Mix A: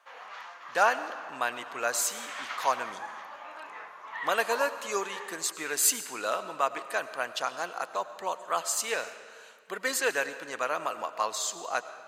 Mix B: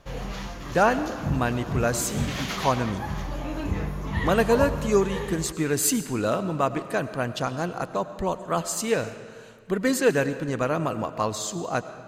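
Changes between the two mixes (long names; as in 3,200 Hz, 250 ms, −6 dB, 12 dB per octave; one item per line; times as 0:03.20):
background: remove resonant band-pass 1,200 Hz, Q 1.1
master: remove high-pass filter 810 Hz 12 dB per octave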